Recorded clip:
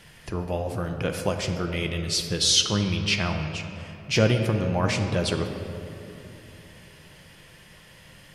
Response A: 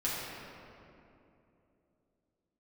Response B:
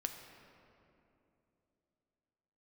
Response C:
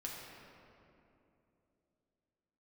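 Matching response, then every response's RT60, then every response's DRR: B; 2.9 s, 3.0 s, 2.9 s; -9.0 dB, 4.5 dB, -4.0 dB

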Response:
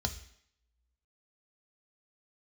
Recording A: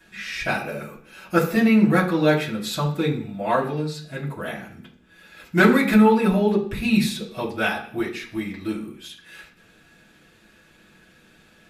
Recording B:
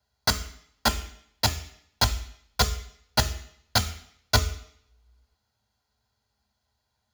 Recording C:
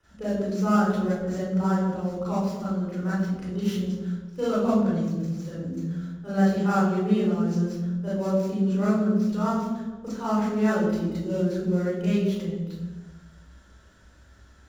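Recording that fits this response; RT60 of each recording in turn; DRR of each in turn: B; 0.50 s, 0.70 s, 1.2 s; -6.0 dB, 6.5 dB, -9.0 dB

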